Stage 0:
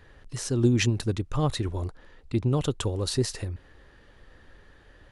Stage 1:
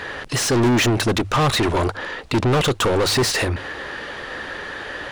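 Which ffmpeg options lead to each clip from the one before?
ffmpeg -i in.wav -filter_complex "[0:a]asplit=2[link_01][link_02];[link_02]highpass=frequency=720:poles=1,volume=36dB,asoftclip=type=tanh:threshold=-10dB[link_03];[link_01][link_03]amix=inputs=2:normalize=0,lowpass=frequency=3900:poles=1,volume=-6dB,bandreject=frequency=50:width_type=h:width=6,bandreject=frequency=100:width_type=h:width=6" out.wav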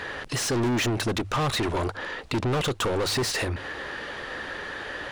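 ffmpeg -i in.wav -af "acompressor=threshold=-27dB:ratio=1.5,volume=-3.5dB" out.wav

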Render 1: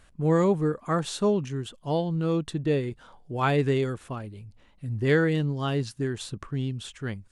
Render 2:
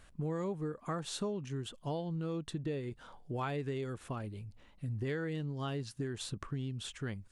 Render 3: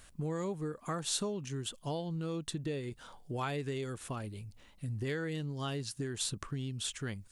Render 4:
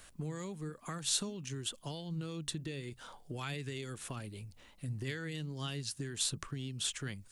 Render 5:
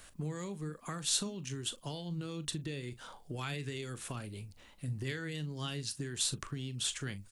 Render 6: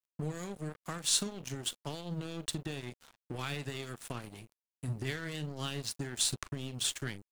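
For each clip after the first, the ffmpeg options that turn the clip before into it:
ffmpeg -i in.wav -af "acompressor=threshold=-33dB:ratio=5,volume=-2dB" out.wav
ffmpeg -i in.wav -af "highshelf=frequency=3800:gain=11.5" out.wav
ffmpeg -i in.wav -filter_complex "[0:a]acrossover=split=260|1700[link_01][link_02][link_03];[link_01]flanger=delay=5.3:depth=9.7:regen=75:speed=1.4:shape=triangular[link_04];[link_02]acompressor=threshold=-48dB:ratio=6[link_05];[link_04][link_05][link_03]amix=inputs=3:normalize=0,volume=2dB" out.wav
ffmpeg -i in.wav -filter_complex "[0:a]asplit=2[link_01][link_02];[link_02]adelay=40,volume=-14dB[link_03];[link_01][link_03]amix=inputs=2:normalize=0,volume=1dB" out.wav
ffmpeg -i in.wav -af "aeval=exprs='sgn(val(0))*max(abs(val(0))-0.00562,0)':channel_layout=same,volume=4dB" out.wav

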